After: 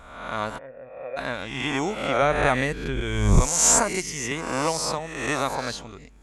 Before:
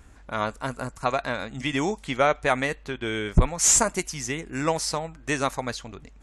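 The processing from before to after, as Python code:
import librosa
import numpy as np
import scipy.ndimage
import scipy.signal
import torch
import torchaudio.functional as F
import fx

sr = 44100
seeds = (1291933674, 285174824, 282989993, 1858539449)

y = fx.spec_swells(x, sr, rise_s=0.95)
y = fx.formant_cascade(y, sr, vowel='e', at=(0.57, 1.16), fade=0.02)
y = fx.low_shelf(y, sr, hz=210.0, db=11.5, at=(2.22, 3.01))
y = fx.band_squash(y, sr, depth_pct=40, at=(4.31, 4.99))
y = y * 10.0 ** (-2.5 / 20.0)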